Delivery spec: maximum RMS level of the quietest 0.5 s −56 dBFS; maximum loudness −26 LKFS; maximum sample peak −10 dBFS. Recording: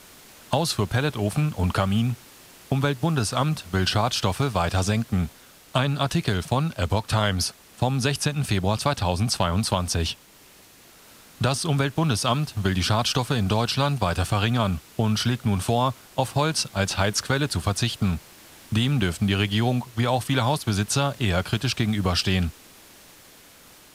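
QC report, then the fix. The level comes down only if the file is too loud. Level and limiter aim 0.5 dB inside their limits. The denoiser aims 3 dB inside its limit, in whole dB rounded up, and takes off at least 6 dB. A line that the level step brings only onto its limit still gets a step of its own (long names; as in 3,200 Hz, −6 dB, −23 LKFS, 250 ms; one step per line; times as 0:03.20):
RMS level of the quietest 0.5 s −51 dBFS: out of spec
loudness −24.0 LKFS: out of spec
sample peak −8.5 dBFS: out of spec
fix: broadband denoise 6 dB, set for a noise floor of −51 dBFS
level −2.5 dB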